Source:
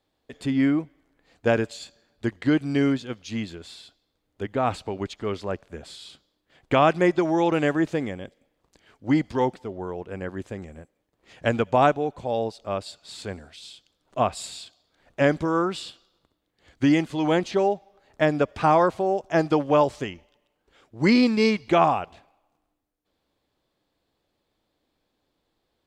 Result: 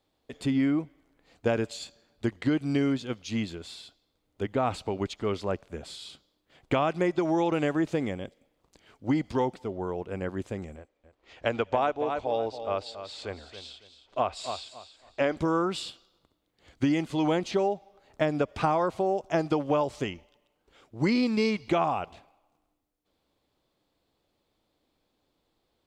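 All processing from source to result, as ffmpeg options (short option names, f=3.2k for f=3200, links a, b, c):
-filter_complex "[0:a]asettb=1/sr,asplit=3[a][b][c];[a]atrim=end=10.764[d];[b]atrim=start=10.76:end=15.37,asetpts=PTS-STARTPTS,afade=t=in:d=0.004:c=qsin,afade=t=out:st=4.606:d=0.004:c=qsin,lowpass=5.1k,equalizer=f=160:t=o:w=1.2:g=-12.5,aecho=1:1:277|554|831:0.266|0.0639|0.0153,atrim=end_sample=203301[e];[c]atrim=start=15.366[f];[d][e]acrossfade=d=0.004:c1=hsin:c2=qsin[g];[g][f]acrossfade=d=0.004:c1=qsin:c2=hsin,equalizer=f=1.7k:t=o:w=0.25:g=-4.5,acompressor=threshold=-22dB:ratio=5"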